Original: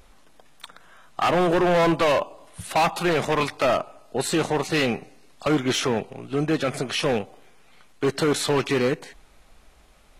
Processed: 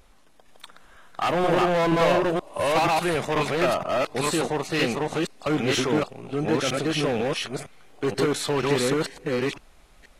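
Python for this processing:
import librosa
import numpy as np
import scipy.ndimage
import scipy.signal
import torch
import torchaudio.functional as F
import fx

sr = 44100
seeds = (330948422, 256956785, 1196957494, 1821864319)

y = fx.reverse_delay(x, sr, ms=479, wet_db=-0.5)
y = y * 10.0 ** (-3.0 / 20.0)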